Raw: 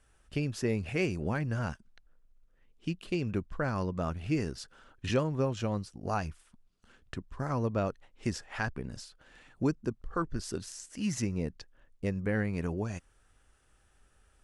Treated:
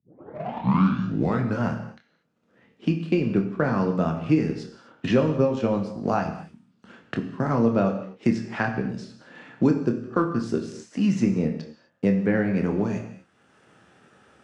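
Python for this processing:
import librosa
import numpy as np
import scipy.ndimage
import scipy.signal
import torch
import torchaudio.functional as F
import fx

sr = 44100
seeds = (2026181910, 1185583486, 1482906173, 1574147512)

p1 = fx.tape_start_head(x, sr, length_s=1.64)
p2 = scipy.signal.sosfilt(scipy.signal.butter(4, 150.0, 'highpass', fs=sr, output='sos'), p1)
p3 = fx.low_shelf(p2, sr, hz=370.0, db=7.5)
p4 = fx.transient(p3, sr, attack_db=2, sustain_db=-2)
p5 = np.sign(p4) * np.maximum(np.abs(p4) - 10.0 ** (-43.0 / 20.0), 0.0)
p6 = p4 + F.gain(torch.from_numpy(p5), -6.0).numpy()
p7 = fx.air_absorb(p6, sr, metres=100.0)
p8 = fx.doubler(p7, sr, ms=26.0, db=-7.5)
p9 = fx.rev_gated(p8, sr, seeds[0], gate_ms=270, shape='falling', drr_db=5.5)
p10 = fx.band_squash(p9, sr, depth_pct=40)
y = F.gain(torch.from_numpy(p10), 1.5).numpy()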